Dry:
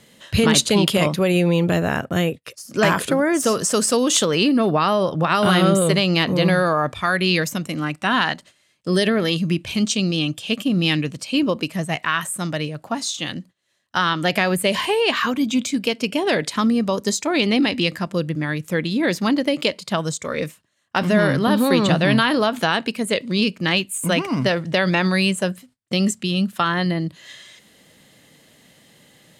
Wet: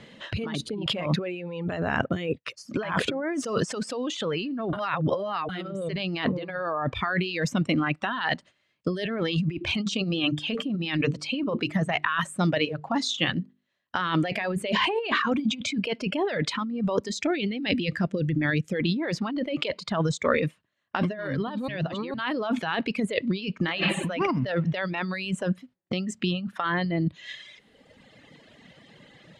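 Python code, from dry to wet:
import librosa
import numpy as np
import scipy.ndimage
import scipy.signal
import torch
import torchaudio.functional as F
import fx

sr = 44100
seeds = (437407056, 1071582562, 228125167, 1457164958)

y = fx.spec_box(x, sr, start_s=0.55, length_s=0.27, low_hz=480.0, high_hz=8700.0, gain_db=-11)
y = fx.high_shelf(y, sr, hz=7800.0, db=-11.0, at=(6.24, 7.17))
y = fx.hum_notches(y, sr, base_hz=50, count=9, at=(9.6, 15.47), fade=0.02)
y = fx.peak_eq(y, sr, hz=1000.0, db=-12.5, octaves=0.75, at=(17.09, 18.8))
y = fx.reverb_throw(y, sr, start_s=23.52, length_s=0.4, rt60_s=2.1, drr_db=5.0)
y = fx.edit(y, sr, fx.reverse_span(start_s=4.73, length_s=0.76),
    fx.reverse_span(start_s=21.68, length_s=0.46), tone=tone)
y = fx.over_compress(y, sr, threshold_db=-25.0, ratio=-1.0)
y = scipy.signal.sosfilt(scipy.signal.butter(2, 3300.0, 'lowpass', fs=sr, output='sos'), y)
y = fx.dereverb_blind(y, sr, rt60_s=1.9)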